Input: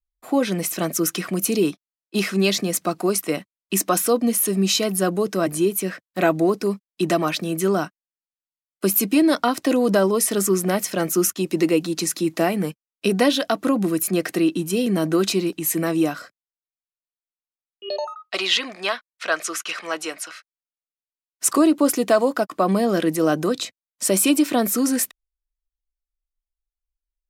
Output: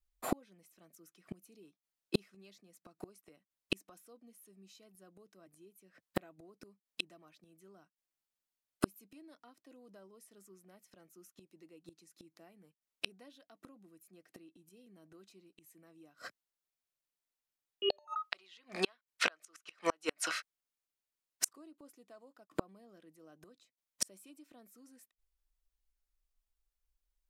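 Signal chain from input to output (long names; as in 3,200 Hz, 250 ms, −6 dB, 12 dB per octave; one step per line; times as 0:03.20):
gate with flip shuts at −18 dBFS, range −42 dB
level +2.5 dB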